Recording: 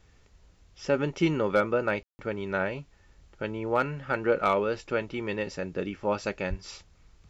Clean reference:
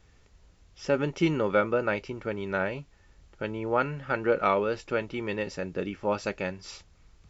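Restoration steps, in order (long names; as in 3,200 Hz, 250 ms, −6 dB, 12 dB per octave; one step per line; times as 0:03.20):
clipped peaks rebuilt −14 dBFS
0:06.49–0:06.61: high-pass filter 140 Hz 24 dB per octave
ambience match 0:02.03–0:02.19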